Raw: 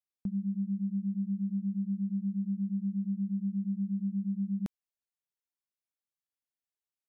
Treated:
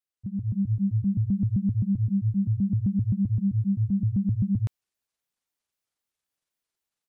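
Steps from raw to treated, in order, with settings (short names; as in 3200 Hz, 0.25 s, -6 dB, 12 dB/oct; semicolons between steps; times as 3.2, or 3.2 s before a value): trilling pitch shifter -10 st, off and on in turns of 0.13 s; AGC gain up to 8 dB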